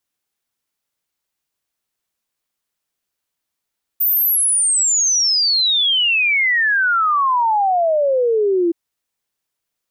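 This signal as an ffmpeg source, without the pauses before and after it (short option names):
-f lavfi -i "aevalsrc='0.224*clip(min(t,4.72-t)/0.01,0,1)*sin(2*PI*15000*4.72/log(330/15000)*(exp(log(330/15000)*t/4.72)-1))':d=4.72:s=44100"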